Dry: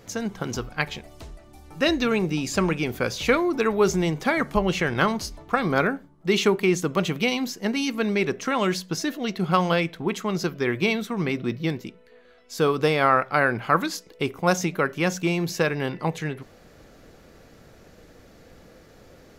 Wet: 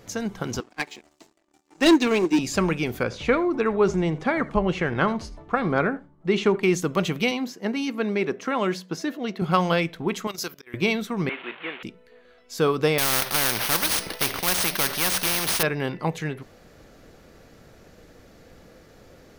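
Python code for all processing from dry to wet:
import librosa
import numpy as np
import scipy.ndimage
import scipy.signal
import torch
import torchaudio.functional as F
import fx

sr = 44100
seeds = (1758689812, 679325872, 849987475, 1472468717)

y = fx.chain(x, sr, fx.cabinet(low_hz=240.0, low_slope=24, high_hz=8000.0, hz=(320.0, 530.0, 1400.0, 3300.0, 7400.0), db=(5, -8, -9, -4, 8)),
    fx.leveller(passes=3),
    fx.upward_expand(threshold_db=-23.0, expansion=2.5), at=(0.6, 2.39))
y = fx.chain(y, sr, fx.lowpass(hz=8500.0, slope=24),
    fx.peak_eq(hz=6000.0, db=-10.5, octaves=1.9),
    fx.echo_single(ms=80, db=-19.5), at=(3.03, 6.63))
y = fx.chain(y, sr, fx.highpass(hz=180.0, slope=12),
    fx.high_shelf(hz=3000.0, db=-9.0), at=(7.31, 9.42))
y = fx.chain(y, sr, fx.riaa(side='recording'),
    fx.auto_swell(attack_ms=522.0),
    fx.level_steps(step_db=15), at=(10.27, 10.74))
y = fx.chain(y, sr, fx.delta_mod(bps=16000, step_db=-33.5),
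    fx.highpass(hz=360.0, slope=12),
    fx.tilt_eq(slope=4.5), at=(11.29, 11.83))
y = fx.chain(y, sr, fx.cvsd(bps=32000),
    fx.resample_bad(factor=3, down='filtered', up='hold'),
    fx.spectral_comp(ratio=4.0), at=(12.98, 15.63))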